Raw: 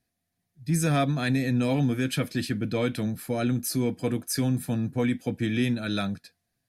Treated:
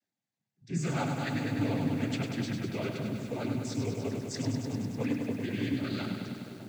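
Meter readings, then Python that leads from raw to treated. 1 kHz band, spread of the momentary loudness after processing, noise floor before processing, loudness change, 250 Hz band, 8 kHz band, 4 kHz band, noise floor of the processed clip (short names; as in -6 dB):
-5.0 dB, 5 LU, -81 dBFS, -6.0 dB, -5.5 dB, -10.0 dB, -7.0 dB, under -85 dBFS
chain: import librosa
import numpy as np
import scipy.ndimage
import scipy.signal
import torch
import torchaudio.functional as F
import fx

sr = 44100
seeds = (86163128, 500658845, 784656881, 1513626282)

y = fx.echo_wet_lowpass(x, sr, ms=602, feedback_pct=63, hz=990.0, wet_db=-13)
y = fx.noise_vocoder(y, sr, seeds[0], bands=16)
y = fx.echo_crushed(y, sr, ms=100, feedback_pct=80, bits=8, wet_db=-5.5)
y = F.gain(torch.from_numpy(y), -8.0).numpy()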